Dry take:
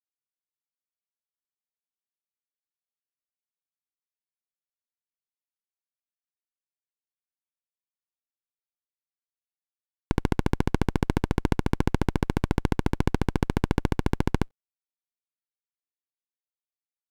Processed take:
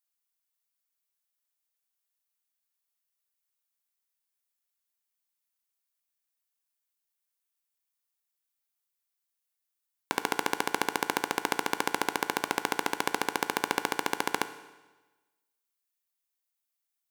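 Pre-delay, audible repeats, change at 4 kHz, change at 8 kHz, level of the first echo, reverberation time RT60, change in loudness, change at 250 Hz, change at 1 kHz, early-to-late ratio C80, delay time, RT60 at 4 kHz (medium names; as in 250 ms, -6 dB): 11 ms, no echo, +6.5 dB, +9.5 dB, no echo, 1.2 s, -3.5 dB, -11.0 dB, +4.0 dB, 14.5 dB, no echo, 1.2 s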